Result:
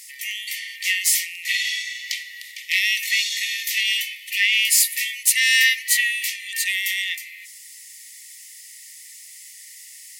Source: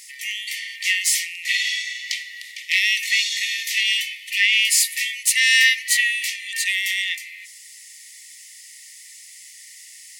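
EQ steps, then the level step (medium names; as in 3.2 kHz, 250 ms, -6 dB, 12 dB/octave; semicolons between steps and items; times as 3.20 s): peaking EQ 14 kHz +10.5 dB 0.54 oct; -1.5 dB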